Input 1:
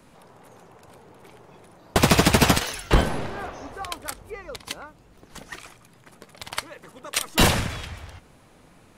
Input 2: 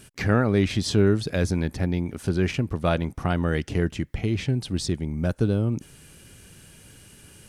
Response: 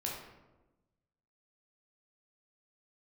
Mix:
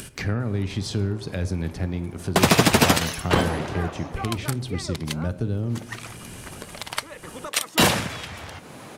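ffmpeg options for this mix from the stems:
-filter_complex "[0:a]highpass=130,adelay=400,volume=1dB[a];[1:a]acrossover=split=180[b][c];[c]acompressor=threshold=-26dB:ratio=6[d];[b][d]amix=inputs=2:normalize=0,volume=-4dB,asplit=2[e][f];[f]volume=-10dB[g];[2:a]atrim=start_sample=2205[h];[g][h]afir=irnorm=-1:irlink=0[i];[a][e][i]amix=inputs=3:normalize=0,acompressor=mode=upward:threshold=-28dB:ratio=2.5"

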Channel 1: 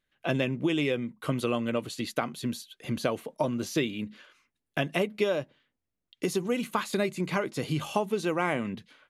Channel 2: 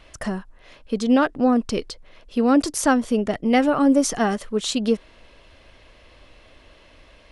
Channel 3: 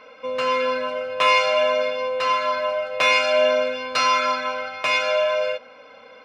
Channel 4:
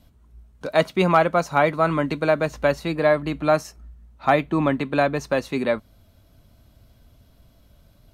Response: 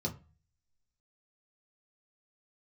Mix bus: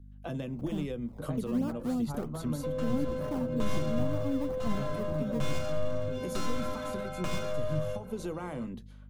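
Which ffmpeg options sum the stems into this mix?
-filter_complex "[0:a]lowshelf=f=210:g=-7.5,volume=0dB,asplit=3[a][b][c];[b]volume=-19dB[d];[1:a]acrusher=samples=21:mix=1:aa=0.000001:lfo=1:lforange=21:lforate=3.1,bass=f=250:g=2,treble=f=4k:g=-10,adelay=450,volume=-9dB[e];[2:a]aeval=exprs='clip(val(0),-1,0.0447)':c=same,adelay=2400,volume=1dB,asplit=2[f][g];[g]volume=-10.5dB[h];[3:a]lowpass=f=1.5k:p=1,acompressor=threshold=-27dB:ratio=6,adelay=550,volume=-5.5dB,asplit=2[i][j];[j]volume=-13.5dB[k];[c]apad=whole_len=382804[l];[i][l]sidechaingate=range=-33dB:threshold=-51dB:ratio=16:detection=peak[m];[a][m]amix=inputs=2:normalize=0,aeval=exprs='val(0)+0.00398*(sin(2*PI*50*n/s)+sin(2*PI*2*50*n/s)/2+sin(2*PI*3*50*n/s)/3+sin(2*PI*4*50*n/s)/4+sin(2*PI*5*50*n/s)/5)':c=same,alimiter=limit=-19.5dB:level=0:latency=1:release=260,volume=0dB[n];[4:a]atrim=start_sample=2205[o];[d][h][k]amix=inputs=3:normalize=0[p];[p][o]afir=irnorm=-1:irlink=0[q];[e][f][n][q]amix=inputs=4:normalize=0,equalizer=f=2.3k:w=0.68:g=-13,acrossover=split=220[r][s];[s]acompressor=threshold=-34dB:ratio=6[t];[r][t]amix=inputs=2:normalize=0"

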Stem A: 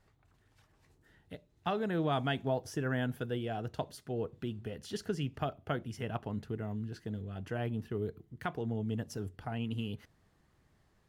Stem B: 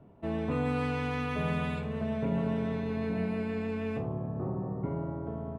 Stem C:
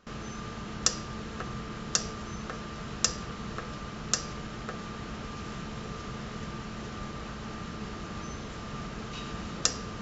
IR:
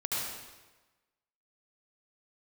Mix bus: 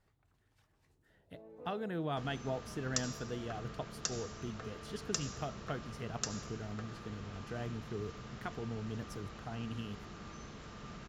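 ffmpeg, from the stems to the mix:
-filter_complex "[0:a]volume=-5.5dB,asplit=2[a][b];[1:a]bandpass=f=540:t=q:w=2.9:csg=0,adelay=1100,volume=-10.5dB,asplit=2[c][d];[d]volume=-14dB[e];[2:a]adelay=2100,volume=-11.5dB,asplit=2[f][g];[g]volume=-13dB[h];[b]apad=whole_len=294692[i];[c][i]sidechaincompress=threshold=-51dB:ratio=8:attack=16:release=1030[j];[3:a]atrim=start_sample=2205[k];[e][h]amix=inputs=2:normalize=0[l];[l][k]afir=irnorm=-1:irlink=0[m];[a][j][f][m]amix=inputs=4:normalize=0"

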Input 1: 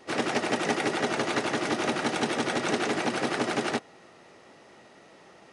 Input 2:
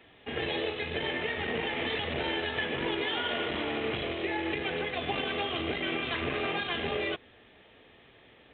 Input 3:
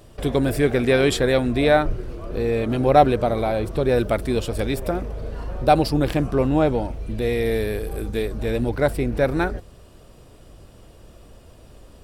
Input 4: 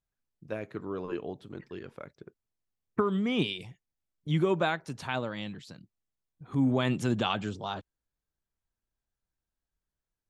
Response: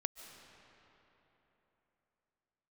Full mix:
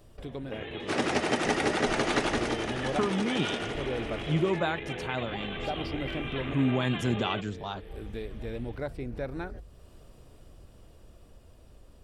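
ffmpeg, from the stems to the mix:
-filter_complex "[0:a]adelay=800,volume=-1dB,afade=t=out:st=2.22:d=0.44:silence=0.354813,afade=t=out:st=3.48:d=0.39:silence=0.298538[a];[1:a]acompressor=threshold=-33dB:ratio=6,adelay=250,volume=-4.5dB[b];[2:a]acrossover=split=6300[c][d];[d]acompressor=threshold=-56dB:ratio=4:attack=1:release=60[e];[c][e]amix=inputs=2:normalize=0,bandreject=f=50:t=h:w=6,bandreject=f=100:t=h:w=6,bandreject=f=150:t=h:w=6,acompressor=threshold=-44dB:ratio=1.5,volume=-9dB[f];[3:a]volume=-5dB,asplit=2[g][h];[h]apad=whole_len=530847[i];[f][i]sidechaincompress=threshold=-50dB:ratio=8:attack=16:release=198[j];[a][b][j][g]amix=inputs=4:normalize=0,lowshelf=f=110:g=5.5,dynaudnorm=f=570:g=9:m=3.5dB"

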